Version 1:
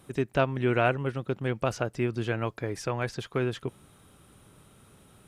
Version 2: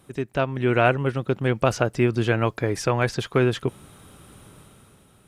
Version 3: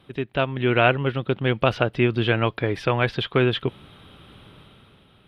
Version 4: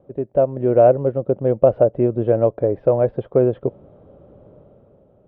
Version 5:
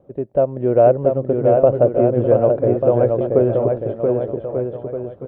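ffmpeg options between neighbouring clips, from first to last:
-af "dynaudnorm=f=100:g=13:m=8.5dB"
-af "highshelf=f=4.9k:t=q:w=3:g=-13.5"
-af "lowpass=f=570:t=q:w=4.9,volume=-1dB"
-af "aecho=1:1:680|1190|1572|1859|2075:0.631|0.398|0.251|0.158|0.1"

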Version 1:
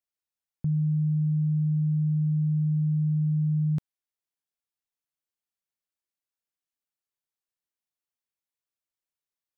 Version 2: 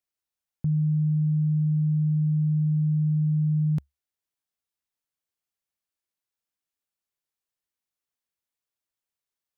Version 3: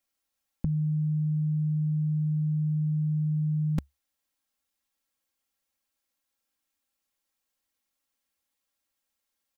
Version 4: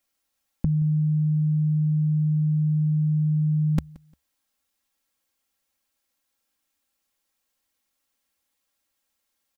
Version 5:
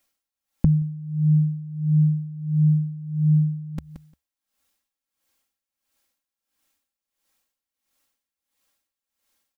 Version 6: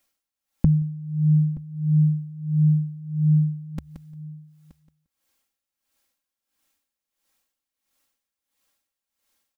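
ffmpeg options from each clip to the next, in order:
-af "equalizer=f=70:w=4.4:g=5.5,volume=1.5dB"
-af "aecho=1:1:3.7:0.98,volume=4dB"
-af "aecho=1:1:175|350:0.0668|0.018,volume=5dB"
-af "aeval=exprs='val(0)*pow(10,-19*(0.5-0.5*cos(2*PI*1.5*n/s))/20)':c=same,volume=6dB"
-af "aecho=1:1:924:0.1"

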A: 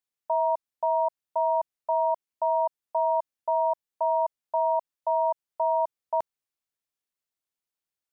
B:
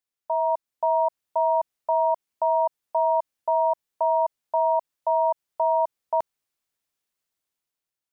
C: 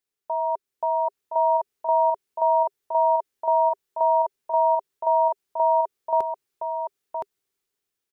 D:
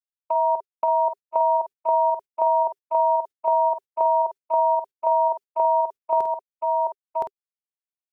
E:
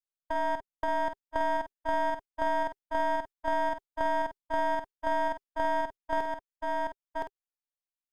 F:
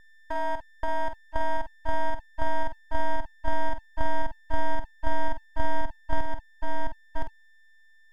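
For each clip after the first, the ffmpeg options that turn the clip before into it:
-af "dynaudnorm=f=210:g=7:m=6.5dB,alimiter=limit=-15dB:level=0:latency=1:release=61"
-filter_complex "[0:a]equalizer=f=400:t=o:w=0.33:g=11,equalizer=f=630:t=o:w=0.33:g=-5,equalizer=f=1k:t=o:w=0.33:g=-3,asplit=2[a][b];[b]aecho=0:1:1017:0.562[c];[a][c]amix=inputs=2:normalize=0,volume=1.5dB"
-filter_complex "[0:a]agate=range=-44dB:threshold=-30dB:ratio=16:detection=peak,acompressor=threshold=-24dB:ratio=6,asplit=2[a][b];[b]adelay=49,volume=-8.5dB[c];[a][c]amix=inputs=2:normalize=0,volume=5.5dB"
-af "aeval=exprs='if(lt(val(0),0),0.251*val(0),val(0))':c=same,volume=-5.5dB"
-af "aeval=exprs='val(0)+0.00316*sin(2*PI*890*n/s)':c=same,asubboost=boost=10:cutoff=140,aeval=exprs='abs(val(0))':c=same"

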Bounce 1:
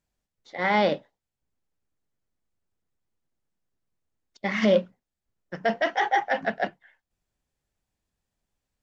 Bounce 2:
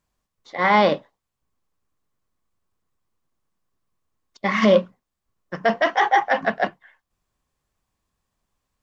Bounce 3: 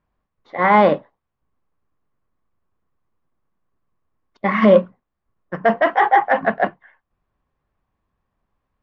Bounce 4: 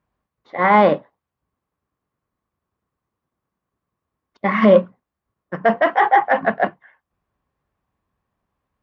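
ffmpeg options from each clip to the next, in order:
-af "equalizer=f=1.1k:w=5.3:g=12,volume=4.5dB"
-af "lowpass=1.9k,volume=4dB"
-af "highpass=55"

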